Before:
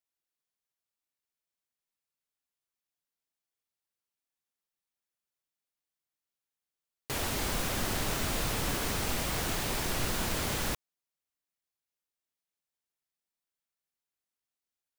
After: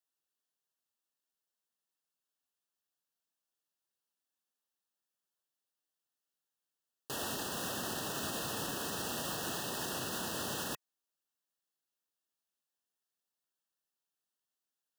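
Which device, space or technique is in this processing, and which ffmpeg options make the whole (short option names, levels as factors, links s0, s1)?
PA system with an anti-feedback notch: -af "highpass=160,asuperstop=centerf=2200:order=20:qfactor=3.3,alimiter=level_in=1.68:limit=0.0631:level=0:latency=1:release=77,volume=0.596"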